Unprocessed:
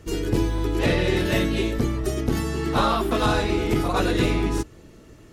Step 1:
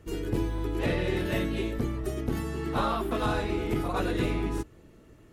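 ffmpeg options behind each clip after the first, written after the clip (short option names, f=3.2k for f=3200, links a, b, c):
-af "equalizer=f=5.5k:w=0.99:g=-6.5,volume=-6.5dB"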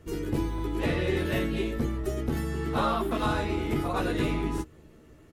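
-filter_complex "[0:a]asplit=2[a][b];[b]adelay=13,volume=-6dB[c];[a][c]amix=inputs=2:normalize=0"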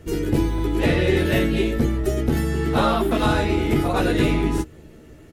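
-af "equalizer=f=1.1k:w=3.5:g=-6,volume=8.5dB"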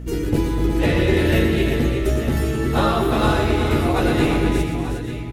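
-af "aeval=exprs='val(0)+0.0282*(sin(2*PI*60*n/s)+sin(2*PI*2*60*n/s)/2+sin(2*PI*3*60*n/s)/3+sin(2*PI*4*60*n/s)/4+sin(2*PI*5*60*n/s)/5)':c=same,aecho=1:1:119|251|359|492|891:0.355|0.266|0.447|0.2|0.266"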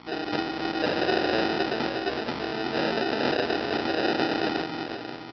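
-af "aresample=11025,acrusher=samples=10:mix=1:aa=0.000001,aresample=44100,highpass=310,volume=-4.5dB"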